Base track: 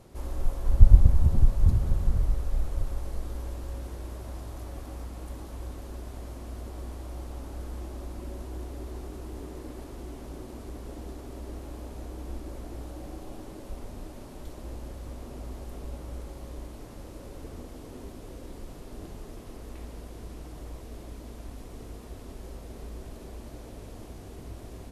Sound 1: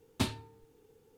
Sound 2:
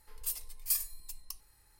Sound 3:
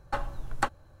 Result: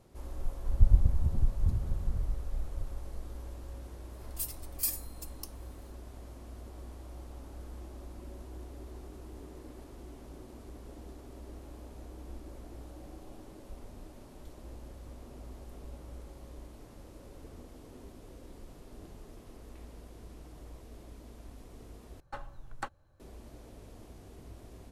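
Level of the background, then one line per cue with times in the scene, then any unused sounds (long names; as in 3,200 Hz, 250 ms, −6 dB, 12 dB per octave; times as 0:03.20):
base track −7.5 dB
0:04.13: mix in 2 −1 dB
0:22.20: overwrite with 3 −11 dB
not used: 1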